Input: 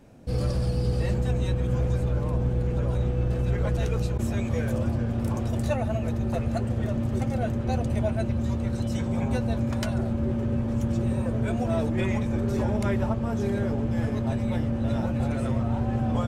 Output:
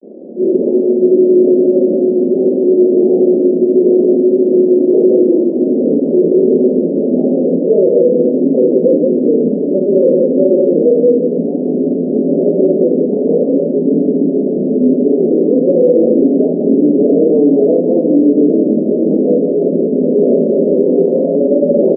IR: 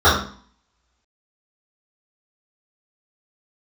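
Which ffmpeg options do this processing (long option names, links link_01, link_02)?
-af "aemphasis=mode=production:type=75kf,aresample=16000,acrusher=bits=7:mix=0:aa=0.000001,aresample=44100,flanger=delay=19.5:depth=6.1:speed=2.1,aecho=1:1:41|128|132|201:0.631|0.531|0.355|0.188,asetrate=32667,aresample=44100,asuperpass=centerf=360:order=12:qfactor=0.93,alimiter=level_in=26dB:limit=-1dB:release=50:level=0:latency=1,volume=-1dB"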